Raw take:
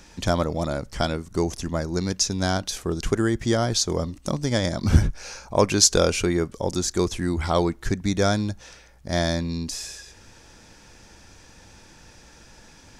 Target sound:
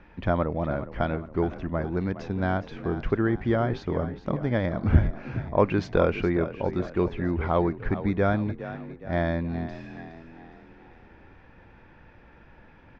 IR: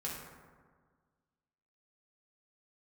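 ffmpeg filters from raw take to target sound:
-filter_complex "[0:a]lowpass=frequency=2400:width=0.5412,lowpass=frequency=2400:width=1.3066,asplit=2[link_01][link_02];[link_02]asplit=5[link_03][link_04][link_05][link_06][link_07];[link_03]adelay=414,afreqshift=38,volume=-13dB[link_08];[link_04]adelay=828,afreqshift=76,volume=-19.4dB[link_09];[link_05]adelay=1242,afreqshift=114,volume=-25.8dB[link_10];[link_06]adelay=1656,afreqshift=152,volume=-32.1dB[link_11];[link_07]adelay=2070,afreqshift=190,volume=-38.5dB[link_12];[link_08][link_09][link_10][link_11][link_12]amix=inputs=5:normalize=0[link_13];[link_01][link_13]amix=inputs=2:normalize=0,volume=-2dB"

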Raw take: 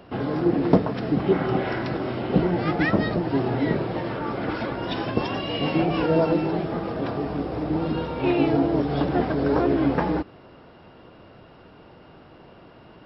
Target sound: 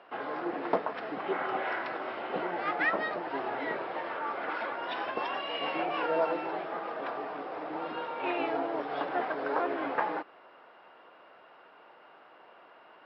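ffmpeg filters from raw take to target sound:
ffmpeg -i in.wav -af "highpass=780,lowpass=2300" out.wav

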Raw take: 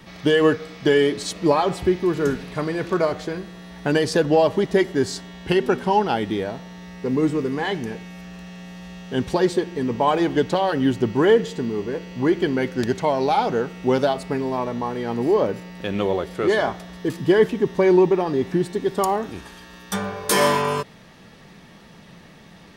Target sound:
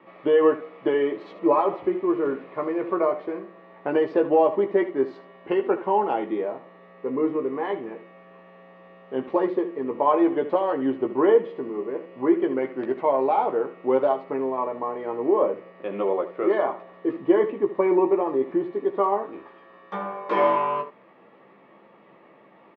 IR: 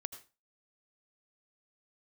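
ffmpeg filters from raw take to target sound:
-af "highpass=340,equalizer=frequency=340:width_type=q:width=4:gain=6,equalizer=frequency=550:width_type=q:width=4:gain=5,equalizer=frequency=1100:width_type=q:width=4:gain=6,equalizer=frequency=1600:width_type=q:width=4:gain=-9,lowpass=frequency=2200:width=0.5412,lowpass=frequency=2200:width=1.3066,aecho=1:1:15|75:0.501|0.237,volume=-4.5dB"

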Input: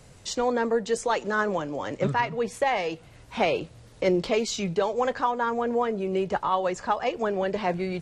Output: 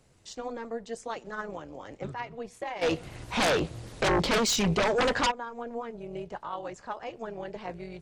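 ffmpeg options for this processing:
ffmpeg -i in.wav -filter_complex "[0:a]tremolo=f=230:d=0.71,asplit=3[link_01][link_02][link_03];[link_01]afade=type=out:start_time=2.81:duration=0.02[link_04];[link_02]aeval=exprs='0.251*sin(PI/2*5.62*val(0)/0.251)':channel_layout=same,afade=type=in:start_time=2.81:duration=0.02,afade=type=out:start_time=5.3:duration=0.02[link_05];[link_03]afade=type=in:start_time=5.3:duration=0.02[link_06];[link_04][link_05][link_06]amix=inputs=3:normalize=0,volume=-8.5dB" out.wav

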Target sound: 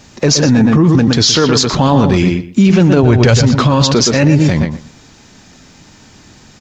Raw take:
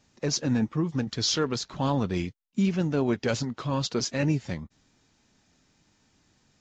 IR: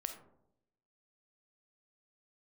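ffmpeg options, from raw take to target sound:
-filter_complex "[0:a]asettb=1/sr,asplit=3[link_01][link_02][link_03];[link_01]atrim=end=3.034[link_04];[link_02]atrim=start=3.03:end=3.43,asetpts=PTS-STARTPTS,afade=type=in:duration=0.004:curve=qsin,afade=type=out:start_time=0.396:duration=0.004:curve=qsin,lowshelf=frequency=160:width_type=q:width=1.5:gain=8[link_05];[link_03]atrim=start=3.426[link_06];[link_04][link_05]acrossfade=duration=0.004:curve1=hsin:curve2=qsin[link_07];[link_07][link_06]acrossfade=duration=0.004:curve1=qsin:curve2=hsin,asplit=2[link_08][link_09];[link_09]adelay=119,lowpass=frequency=3200:poles=1,volume=-8.5dB,asplit=2[link_10][link_11];[link_11]adelay=119,lowpass=frequency=3200:poles=1,volume=0.18,asplit=2[link_12][link_13];[link_13]adelay=119,lowpass=frequency=3200:poles=1,volume=0.18[link_14];[link_10][link_12][link_14]amix=inputs=3:normalize=0[link_15];[link_08][link_15]amix=inputs=2:normalize=0,alimiter=level_in=24.5dB:limit=-1dB:release=50:level=0:latency=1,volume=-1dB"

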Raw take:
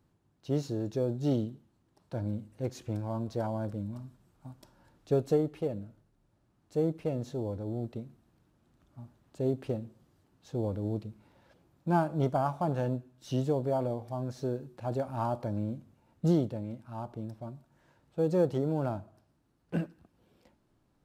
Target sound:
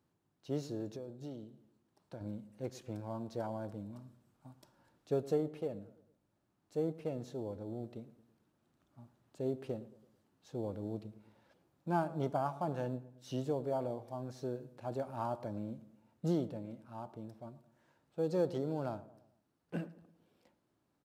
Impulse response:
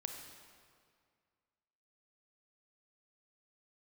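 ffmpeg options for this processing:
-filter_complex "[0:a]highpass=frequency=180:poles=1,asettb=1/sr,asplit=3[link_01][link_02][link_03];[link_01]atrim=end=0.954[link_04];[link_02]atrim=start=0.95:end=2.21,asetpts=PTS-STARTPTS,afade=type=in:duration=0.004:curve=qsin,afade=type=out:start_time=1.256:duration=0.004:curve=qsin,acompressor=threshold=-39dB:ratio=4[link_05];[link_03]atrim=start=2.206[link_06];[link_04][link_05]acrossfade=duration=0.004:curve1=hsin:curve2=qsin[link_07];[link_07][link_06]acrossfade=duration=0.004:curve1=qsin:curve2=hsin,asettb=1/sr,asplit=3[link_08][link_09][link_10];[link_08]atrim=end=18.234[link_11];[link_09]atrim=start=18.23:end=18.95,asetpts=PTS-STARTPTS,afade=type=in:duration=0.004:curve=qsin,afade=type=out:start_time=0.716:duration=0.004:curve=qsin,equalizer=frequency=4500:width=1.9:gain=5.5[link_12];[link_10]atrim=start=18.946[link_13];[link_11][link_12]acrossfade=duration=0.004:curve1=hsin:curve2=qsin[link_14];[link_14][link_13]acrossfade=duration=0.004:curve1=qsin:curve2=hsin,asplit=2[link_15][link_16];[link_16]adelay=111,lowpass=frequency=1300:poles=1,volume=-16.5dB,asplit=2[link_17][link_18];[link_18]adelay=111,lowpass=frequency=1300:poles=1,volume=0.49,asplit=2[link_19][link_20];[link_20]adelay=111,lowpass=frequency=1300:poles=1,volume=0.49,asplit=2[link_21][link_22];[link_22]adelay=111,lowpass=frequency=1300:poles=1,volume=0.49[link_23];[link_15][link_17][link_19][link_21][link_23]amix=inputs=5:normalize=0,volume=-5dB"

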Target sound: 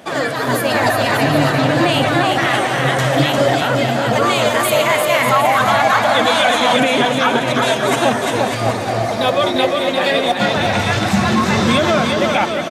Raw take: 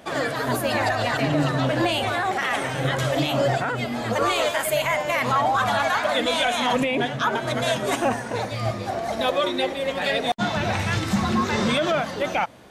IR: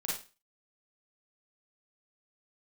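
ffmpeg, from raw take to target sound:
-af "highpass=91,aecho=1:1:350|595|766.5|886.6|970.6:0.631|0.398|0.251|0.158|0.1,volume=6dB"

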